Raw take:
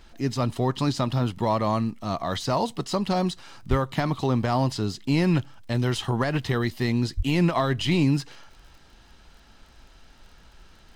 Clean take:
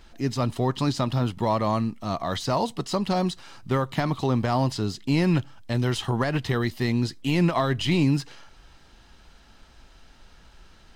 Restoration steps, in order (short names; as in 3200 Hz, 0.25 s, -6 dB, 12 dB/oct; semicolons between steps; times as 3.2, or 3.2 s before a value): de-click; 3.69–3.81 HPF 140 Hz 24 dB/oct; 7.16–7.28 HPF 140 Hz 24 dB/oct